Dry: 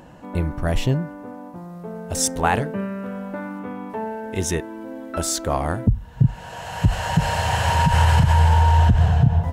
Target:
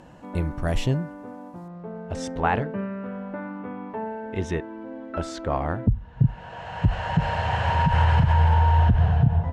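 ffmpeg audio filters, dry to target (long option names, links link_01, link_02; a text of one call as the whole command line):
ffmpeg -i in.wav -af "asetnsamples=nb_out_samples=441:pad=0,asendcmd='1.68 lowpass f 2800',lowpass=11000,volume=-3dB" out.wav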